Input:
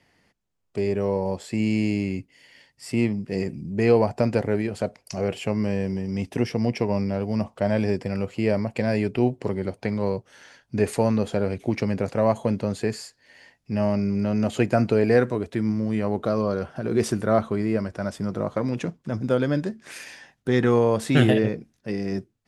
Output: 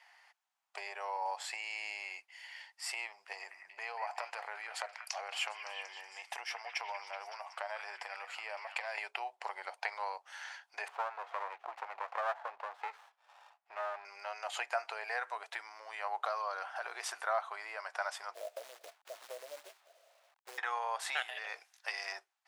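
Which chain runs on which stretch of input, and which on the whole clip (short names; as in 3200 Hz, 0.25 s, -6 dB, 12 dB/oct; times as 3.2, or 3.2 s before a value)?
3.32–8.98 compressor 4:1, threshold -31 dBFS + delay with a stepping band-pass 0.187 s, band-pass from 1600 Hz, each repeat 0.7 oct, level -5.5 dB
10.88–14.05 LPF 1700 Hz + running maximum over 17 samples
18.34–20.58 Chebyshev low-pass 680 Hz, order 8 + companded quantiser 6-bit
21.22–22.12 HPF 120 Hz + high shelf 2100 Hz +9 dB + compressor 12:1, threshold -26 dBFS
whole clip: compressor 4:1, threshold -27 dBFS; elliptic high-pass 780 Hz, stop band 70 dB; tilt -2 dB/oct; gain +5.5 dB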